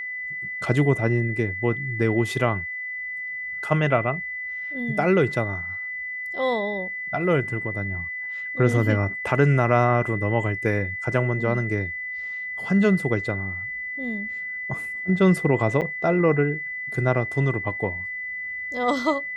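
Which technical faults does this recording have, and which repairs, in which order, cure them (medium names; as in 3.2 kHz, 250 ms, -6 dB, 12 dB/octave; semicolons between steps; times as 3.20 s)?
whine 2 kHz -29 dBFS
15.81–15.82 s: dropout 8 ms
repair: band-stop 2 kHz, Q 30; interpolate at 15.81 s, 8 ms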